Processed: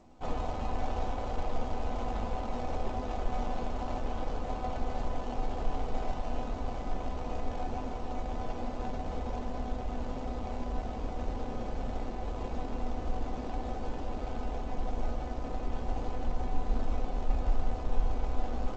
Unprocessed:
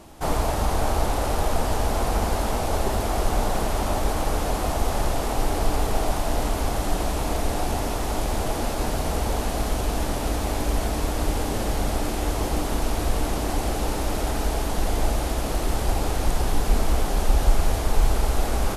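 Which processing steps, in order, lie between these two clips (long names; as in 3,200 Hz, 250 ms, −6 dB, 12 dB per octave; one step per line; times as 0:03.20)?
running median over 25 samples
mains-hum notches 50/100/150/200/250/300/350/400/450/500 Hz
tuned comb filter 250 Hz, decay 0.16 s, harmonics all, mix 80%
G.722 64 kbit/s 16,000 Hz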